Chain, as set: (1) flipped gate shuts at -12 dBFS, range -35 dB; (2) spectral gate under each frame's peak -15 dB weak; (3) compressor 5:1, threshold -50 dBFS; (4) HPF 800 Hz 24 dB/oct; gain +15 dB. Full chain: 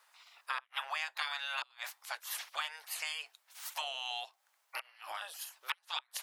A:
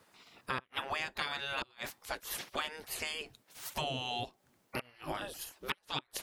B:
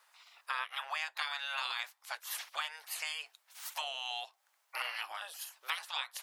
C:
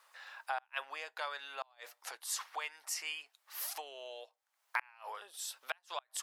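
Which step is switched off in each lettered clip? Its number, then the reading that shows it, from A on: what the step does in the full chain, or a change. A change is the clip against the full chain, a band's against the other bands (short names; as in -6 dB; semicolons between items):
4, 500 Hz band +10.5 dB; 1, crest factor change -3.0 dB; 2, 4 kHz band -7.5 dB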